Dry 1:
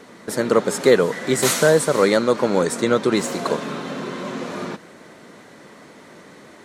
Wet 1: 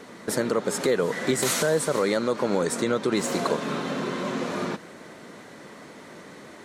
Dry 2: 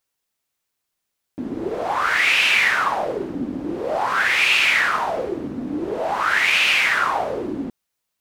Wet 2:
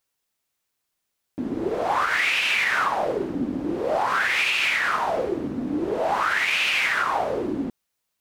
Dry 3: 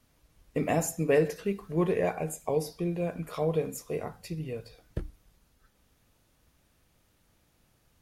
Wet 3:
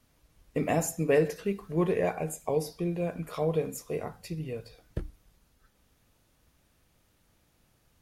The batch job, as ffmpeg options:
-af "alimiter=limit=0.224:level=0:latency=1:release=197"

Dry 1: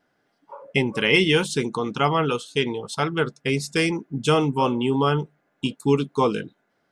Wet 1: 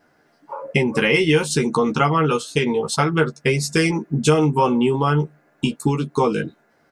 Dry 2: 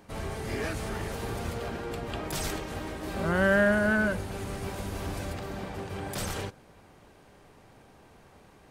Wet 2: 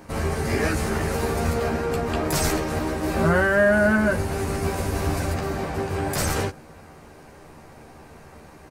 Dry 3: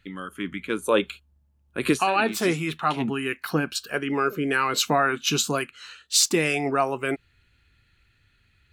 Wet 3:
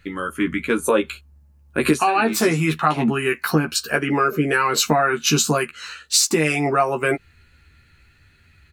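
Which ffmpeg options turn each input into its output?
-filter_complex "[0:a]equalizer=f=3300:w=3.1:g=-7,acompressor=threshold=0.0562:ratio=4,asplit=2[s0][s1];[s1]adelay=13,volume=0.631[s2];[s0][s2]amix=inputs=2:normalize=0,volume=2.66"

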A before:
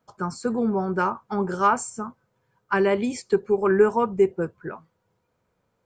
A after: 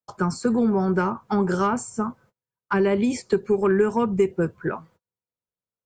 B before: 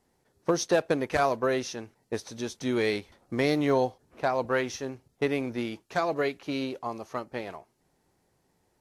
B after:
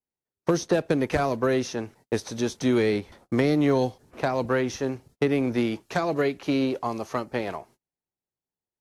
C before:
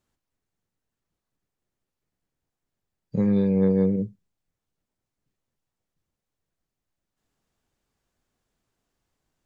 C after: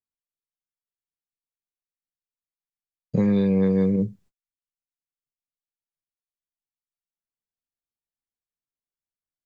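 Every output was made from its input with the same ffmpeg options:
-filter_complex "[0:a]acrossover=split=350|1700[s0][s1][s2];[s0]acompressor=threshold=0.0398:ratio=4[s3];[s1]acompressor=threshold=0.0178:ratio=4[s4];[s2]acompressor=threshold=0.00631:ratio=4[s5];[s3][s4][s5]amix=inputs=3:normalize=0,aeval=exprs='0.15*(cos(1*acos(clip(val(0)/0.15,-1,1)))-cos(1*PI/2))+0.00299*(cos(5*acos(clip(val(0)/0.15,-1,1)))-cos(5*PI/2))':c=same,agate=range=0.0178:threshold=0.00112:ratio=16:detection=peak,volume=2.37"

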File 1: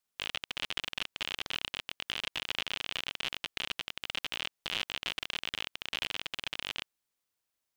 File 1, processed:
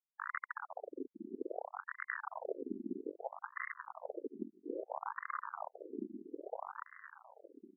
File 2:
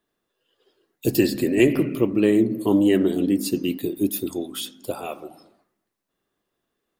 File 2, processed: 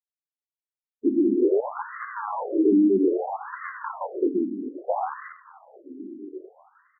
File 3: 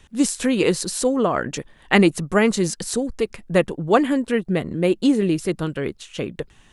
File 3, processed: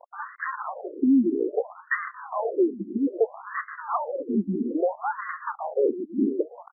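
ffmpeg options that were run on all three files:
-filter_complex "[0:a]afftfilt=real='re*pow(10,9/40*sin(2*PI*(0.65*log(max(b,1)*sr/1024/100)/log(2)-(0.74)*(pts-256)/sr)))':imag='im*pow(10,9/40*sin(2*PI*(0.65*log(max(b,1)*sr/1024/100)/log(2)-(0.74)*(pts-256)/sr)))':win_size=1024:overlap=0.75,lowpass=f=7700:w=0.5412,lowpass=f=7700:w=1.3066,lowshelf=f=460:g=3.5,acrossover=split=1800[s0][s1];[s1]alimiter=limit=0.178:level=0:latency=1:release=489[s2];[s0][s2]amix=inputs=2:normalize=0,acompressor=threshold=0.112:ratio=2,asplit=2[s3][s4];[s4]acrusher=samples=36:mix=1:aa=0.000001:lfo=1:lforange=36:lforate=0.53,volume=0.562[s5];[s3][s5]amix=inputs=2:normalize=0,asoftclip=type=tanh:threshold=0.596,acrusher=bits=5:mix=0:aa=0.000001,volume=10,asoftclip=hard,volume=0.1,asplit=2[s6][s7];[s7]adelay=1108,lowpass=f=4700:p=1,volume=0.224,asplit=2[s8][s9];[s9]adelay=1108,lowpass=f=4700:p=1,volume=0.4,asplit=2[s10][s11];[s11]adelay=1108,lowpass=f=4700:p=1,volume=0.4,asplit=2[s12][s13];[s13]adelay=1108,lowpass=f=4700:p=1,volume=0.4[s14];[s6][s8][s10][s12][s14]amix=inputs=5:normalize=0,afftfilt=real='re*between(b*sr/1024,270*pow(1500/270,0.5+0.5*sin(2*PI*0.61*pts/sr))/1.41,270*pow(1500/270,0.5+0.5*sin(2*PI*0.61*pts/sr))*1.41)':imag='im*between(b*sr/1024,270*pow(1500/270,0.5+0.5*sin(2*PI*0.61*pts/sr))/1.41,270*pow(1500/270,0.5+0.5*sin(2*PI*0.61*pts/sr))*1.41)':win_size=1024:overlap=0.75,volume=1.78"

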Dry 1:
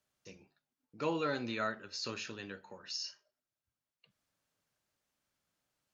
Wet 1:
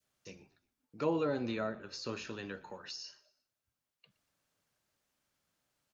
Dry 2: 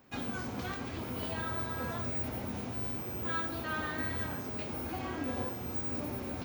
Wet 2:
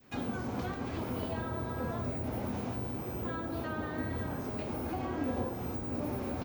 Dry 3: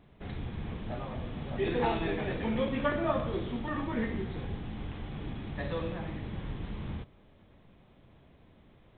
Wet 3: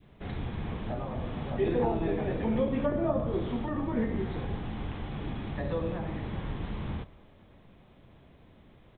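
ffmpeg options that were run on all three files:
-filter_complex "[0:a]adynamicequalizer=threshold=0.00355:dfrequency=930:dqfactor=0.78:tfrequency=930:tqfactor=0.78:attack=5:release=100:ratio=0.375:range=2.5:mode=boostabove:tftype=bell,acrossover=split=630[s0][s1];[s1]acompressor=threshold=0.00562:ratio=6[s2];[s0][s2]amix=inputs=2:normalize=0,asplit=4[s3][s4][s5][s6];[s4]adelay=119,afreqshift=-45,volume=0.0794[s7];[s5]adelay=238,afreqshift=-90,volume=0.0351[s8];[s6]adelay=357,afreqshift=-135,volume=0.0153[s9];[s3][s7][s8][s9]amix=inputs=4:normalize=0,volume=1.33"

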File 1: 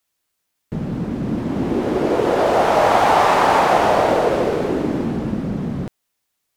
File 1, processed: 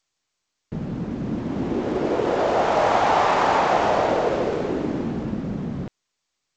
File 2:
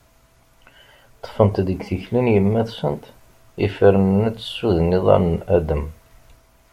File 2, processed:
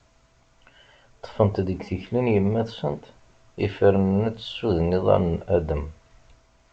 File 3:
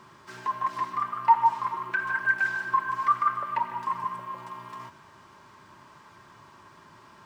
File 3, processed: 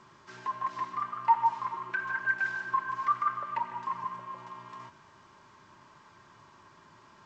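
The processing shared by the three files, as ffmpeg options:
-af "volume=0.596" -ar 16000 -c:a g722

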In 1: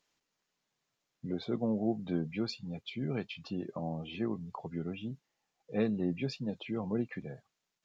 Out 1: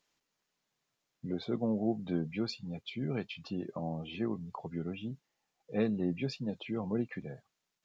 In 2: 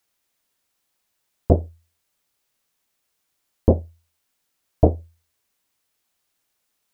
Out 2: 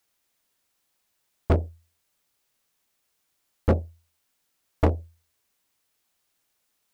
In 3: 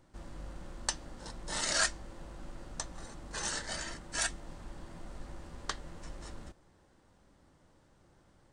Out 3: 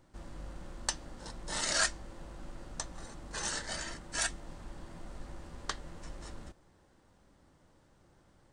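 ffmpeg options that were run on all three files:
-af "asoftclip=type=hard:threshold=0.188"

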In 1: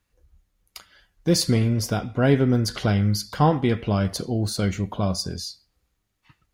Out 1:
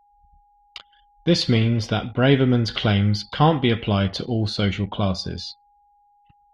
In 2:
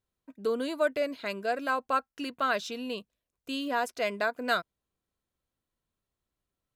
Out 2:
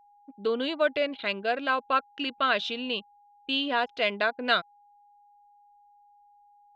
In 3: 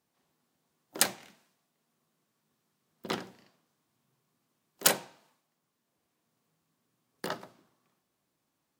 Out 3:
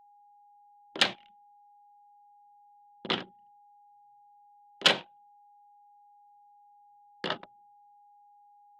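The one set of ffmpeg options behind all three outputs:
-af "lowpass=f=3300:t=q:w=3.3,anlmdn=0.1,aeval=exprs='val(0)+0.00126*sin(2*PI*820*n/s)':c=same,volume=1.19"

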